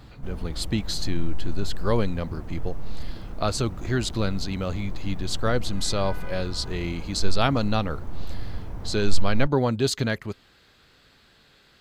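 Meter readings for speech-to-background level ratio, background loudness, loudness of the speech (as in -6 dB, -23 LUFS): 11.5 dB, -39.0 LUFS, -27.5 LUFS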